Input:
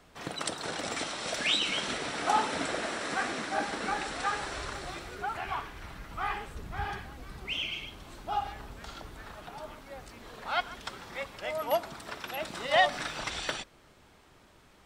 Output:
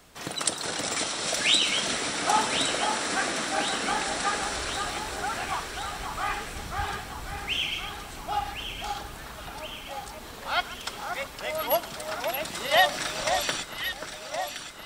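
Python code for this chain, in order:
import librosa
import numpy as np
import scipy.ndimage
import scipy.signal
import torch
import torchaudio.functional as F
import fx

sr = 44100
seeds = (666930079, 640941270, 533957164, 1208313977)

y = fx.high_shelf(x, sr, hz=4800.0, db=11.5)
y = fx.echo_alternate(y, sr, ms=534, hz=1600.0, feedback_pct=77, wet_db=-6.0)
y = F.gain(torch.from_numpy(y), 2.0).numpy()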